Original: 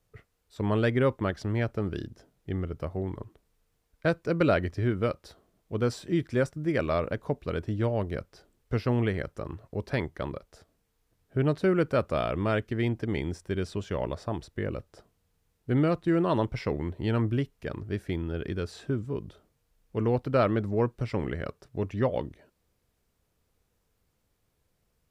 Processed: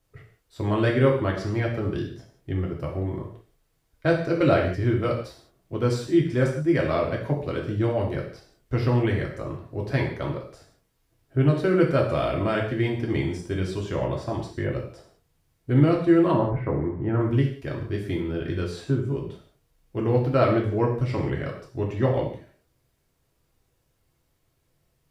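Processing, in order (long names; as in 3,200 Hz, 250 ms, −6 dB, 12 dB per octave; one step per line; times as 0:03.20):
0:16.31–0:17.21: low-pass filter 1,700 Hz 24 dB per octave
reverb whose tail is shaped and stops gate 210 ms falling, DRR −1.5 dB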